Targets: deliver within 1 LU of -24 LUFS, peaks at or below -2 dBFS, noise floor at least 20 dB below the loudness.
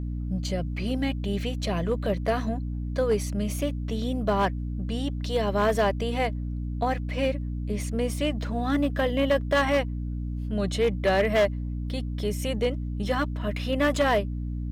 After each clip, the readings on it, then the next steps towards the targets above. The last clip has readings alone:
clipped 0.9%; flat tops at -16.5 dBFS; hum 60 Hz; harmonics up to 300 Hz; hum level -28 dBFS; loudness -27.0 LUFS; peak -16.5 dBFS; loudness target -24.0 LUFS
-> clip repair -16.5 dBFS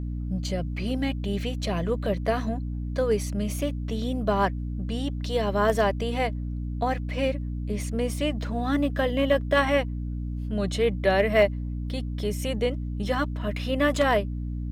clipped 0.0%; hum 60 Hz; harmonics up to 300 Hz; hum level -28 dBFS
-> de-hum 60 Hz, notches 5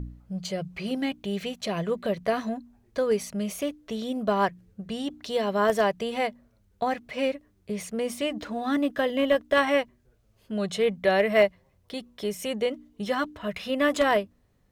hum none; loudness -27.5 LUFS; peak -9.0 dBFS; loudness target -24.0 LUFS
-> gain +3.5 dB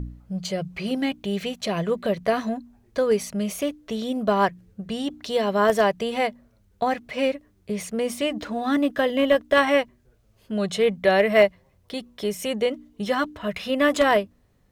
loudness -24.0 LUFS; peak -5.5 dBFS; noise floor -62 dBFS

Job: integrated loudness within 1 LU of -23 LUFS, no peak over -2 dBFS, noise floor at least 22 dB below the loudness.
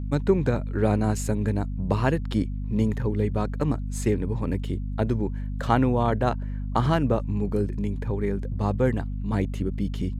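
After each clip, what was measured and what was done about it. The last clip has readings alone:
hum 50 Hz; harmonics up to 250 Hz; hum level -27 dBFS; loudness -26.0 LUFS; peak -6.0 dBFS; loudness target -23.0 LUFS
-> de-hum 50 Hz, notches 5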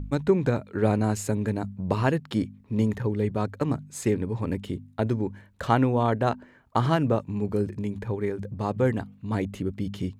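hum none; loudness -27.0 LUFS; peak -7.0 dBFS; loudness target -23.0 LUFS
-> gain +4 dB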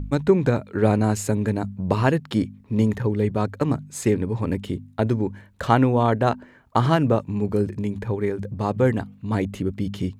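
loudness -23.0 LUFS; peak -3.0 dBFS; noise floor -51 dBFS

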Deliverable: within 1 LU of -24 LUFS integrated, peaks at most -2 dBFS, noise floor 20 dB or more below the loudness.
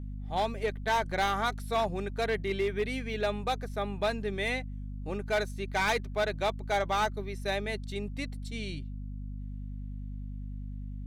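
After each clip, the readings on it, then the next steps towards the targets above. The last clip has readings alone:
clipped 1.2%; flat tops at -22.5 dBFS; hum 50 Hz; harmonics up to 250 Hz; hum level -36 dBFS; loudness -32.5 LUFS; peak -22.5 dBFS; loudness target -24.0 LUFS
-> clip repair -22.5 dBFS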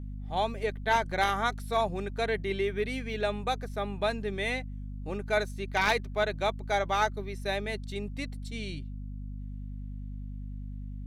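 clipped 0.0%; hum 50 Hz; harmonics up to 250 Hz; hum level -36 dBFS
-> notches 50/100/150/200/250 Hz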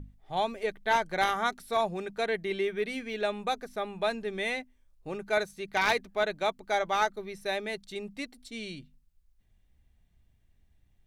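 hum none; loudness -31.0 LUFS; peak -13.0 dBFS; loudness target -24.0 LUFS
-> gain +7 dB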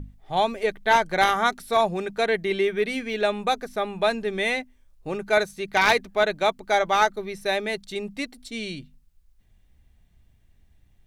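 loudness -24.0 LUFS; peak -6.0 dBFS; noise floor -60 dBFS

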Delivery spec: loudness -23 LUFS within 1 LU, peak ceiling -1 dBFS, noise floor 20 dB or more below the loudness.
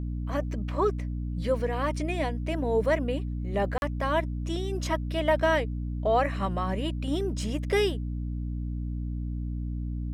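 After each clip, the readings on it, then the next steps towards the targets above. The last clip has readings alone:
dropouts 1; longest dropout 41 ms; hum 60 Hz; harmonics up to 300 Hz; hum level -29 dBFS; loudness -29.0 LUFS; peak -12.0 dBFS; loudness target -23.0 LUFS
-> interpolate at 3.78, 41 ms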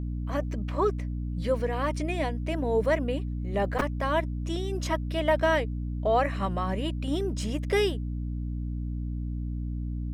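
dropouts 0; hum 60 Hz; harmonics up to 300 Hz; hum level -29 dBFS
-> de-hum 60 Hz, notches 5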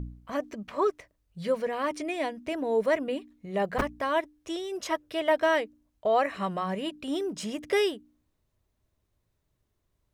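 hum none; loudness -29.5 LUFS; peak -13.0 dBFS; loudness target -23.0 LUFS
-> gain +6.5 dB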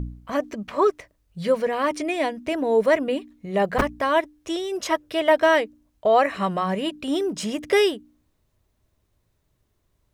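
loudness -23.0 LUFS; peak -6.5 dBFS; noise floor -70 dBFS

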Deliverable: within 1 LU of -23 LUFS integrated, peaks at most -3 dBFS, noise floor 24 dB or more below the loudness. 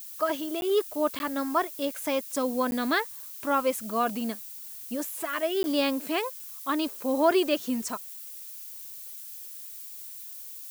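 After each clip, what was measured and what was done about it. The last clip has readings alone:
dropouts 4; longest dropout 11 ms; noise floor -42 dBFS; noise floor target -54 dBFS; loudness -29.5 LUFS; peak -10.5 dBFS; loudness target -23.0 LUFS
-> interpolate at 0.61/1.19/2.71/5.63, 11 ms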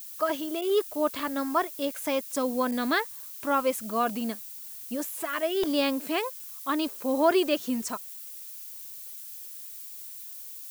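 dropouts 0; noise floor -42 dBFS; noise floor target -54 dBFS
-> noise print and reduce 12 dB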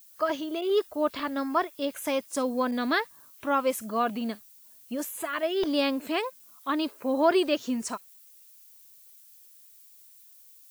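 noise floor -54 dBFS; loudness -28.5 LUFS; peak -11.0 dBFS; loudness target -23.0 LUFS
-> gain +5.5 dB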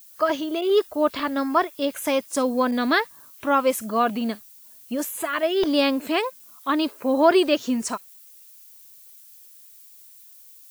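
loudness -23.0 LUFS; peak -5.5 dBFS; noise floor -49 dBFS

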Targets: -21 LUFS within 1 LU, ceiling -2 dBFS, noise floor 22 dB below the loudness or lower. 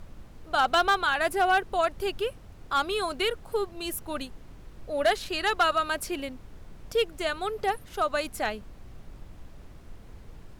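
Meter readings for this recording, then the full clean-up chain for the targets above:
clipped 0.3%; flat tops at -16.0 dBFS; noise floor -48 dBFS; noise floor target -50 dBFS; loudness -27.5 LUFS; peak -16.0 dBFS; loudness target -21.0 LUFS
-> clip repair -16 dBFS; noise print and reduce 6 dB; gain +6.5 dB

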